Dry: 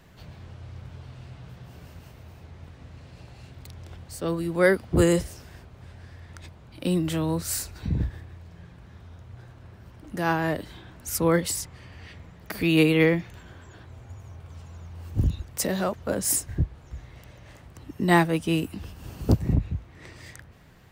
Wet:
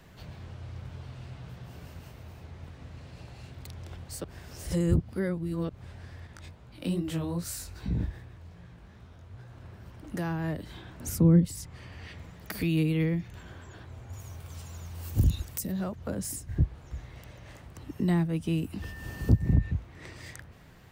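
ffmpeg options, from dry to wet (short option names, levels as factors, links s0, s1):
-filter_complex "[0:a]asettb=1/sr,asplit=3[s0][s1][s2];[s0]atrim=end=6.274[s3];[s1]atrim=start=6.27:end=9.53,asetpts=PTS-STARTPTS,afade=t=in:d=0.004:c=qsin,afade=t=out:st=3.256:d=0.004:c=qsin,flanger=delay=15.5:depth=6.3:speed=2.5[s4];[s2]atrim=start=9.526[s5];[s3][s4]acrossfade=d=0.004:c1=hsin:c2=qsin[s6];[s6][s5]acrossfade=d=0.004:c1=qsin:c2=hsin,asettb=1/sr,asplit=3[s7][s8][s9];[s7]atrim=end=11.004[s10];[s8]atrim=start=11:end=11.45,asetpts=PTS-STARTPTS,afade=t=in:d=0.004:c=qsin,afade=t=out:st=0.446:d=0.004:c=qsin,equalizer=f=220:w=0.37:g=10[s11];[s9]atrim=start=11.446[s12];[s10][s11]acrossfade=d=0.004:c1=hsin:c2=qsin[s13];[s13][s12]acrossfade=d=0.004:c1=qsin:c2=hsin,asettb=1/sr,asplit=3[s14][s15][s16];[s14]atrim=end=12.184[s17];[s15]atrim=start=12.18:end=13.28,asetpts=PTS-STARTPTS,afade=t=in:d=0.004:c=qsin,afade=t=out:st=1.096:d=0.004:c=qsin,highshelf=f=3600:g=5.5[s18];[s16]atrim=start=13.276[s19];[s17][s18]acrossfade=d=0.004:c1=hsin:c2=qsin[s20];[s20][s19]acrossfade=d=0.004:c1=qsin:c2=hsin,asplit=3[s21][s22][s23];[s21]afade=t=out:st=14.12:d=0.02[s24];[s22]aemphasis=mode=production:type=75kf,afade=t=in:st=14.12:d=0.02,afade=t=out:st=15.71:d=0.02[s25];[s23]afade=t=in:st=15.71:d=0.02[s26];[s24][s25][s26]amix=inputs=3:normalize=0,asettb=1/sr,asplit=3[s27][s28][s29];[s27]atrim=end=18.824[s30];[s28]atrim=start=18.82:end=19.71,asetpts=PTS-STARTPTS,afade=t=in:d=0.004:c=qsin,afade=t=out:st=0.886:d=0.004:c=qsin,aeval=exprs='val(0)+0.00562*sin(2*PI*1800*n/s)':c=same[s31];[s29]atrim=start=19.706[s32];[s30][s31]acrossfade=d=0.004:c1=hsin:c2=qsin[s33];[s33][s32]acrossfade=d=0.004:c1=qsin:c2=hsin,asplit=3[s34][s35][s36];[s34]atrim=end=4.242[s37];[s35]atrim=start=4.238:end=5.692,asetpts=PTS-STARTPTS,areverse[s38];[s36]atrim=start=5.688[s39];[s37][s38]acrossfade=d=0.004:c1=hsin:c2=hsin[s40];[s40][s39]acrossfade=d=0.004:c1=hsin:c2=hsin,acrossover=split=240[s41][s42];[s42]acompressor=threshold=0.0178:ratio=8[s43];[s41][s43]amix=inputs=2:normalize=0"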